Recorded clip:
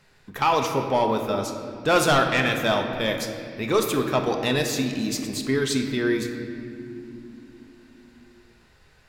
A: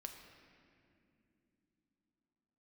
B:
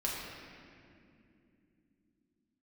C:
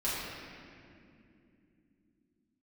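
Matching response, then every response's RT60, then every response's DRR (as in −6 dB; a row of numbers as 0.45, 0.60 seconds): A; non-exponential decay, non-exponential decay, non-exponential decay; 3.5, −5.0, −10.5 decibels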